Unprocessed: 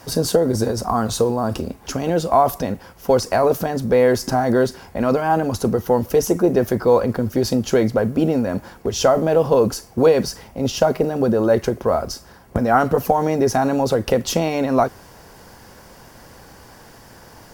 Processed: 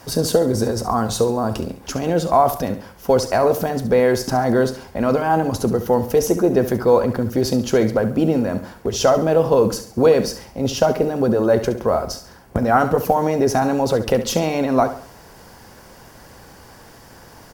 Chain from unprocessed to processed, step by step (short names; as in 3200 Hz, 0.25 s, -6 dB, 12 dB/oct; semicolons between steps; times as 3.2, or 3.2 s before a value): feedback echo 69 ms, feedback 40%, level -12 dB